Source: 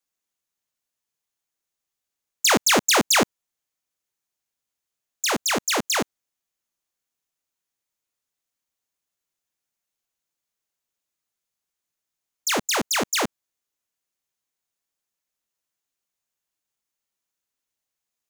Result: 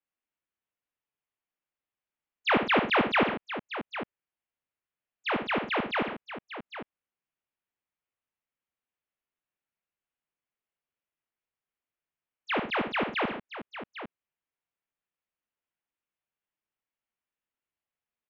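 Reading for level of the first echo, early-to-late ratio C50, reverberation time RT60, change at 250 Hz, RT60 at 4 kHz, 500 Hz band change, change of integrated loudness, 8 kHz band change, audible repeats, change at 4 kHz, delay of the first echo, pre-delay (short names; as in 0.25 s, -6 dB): -8.0 dB, none, none, -3.5 dB, none, -3.5 dB, -7.5 dB, under -40 dB, 3, -11.5 dB, 60 ms, none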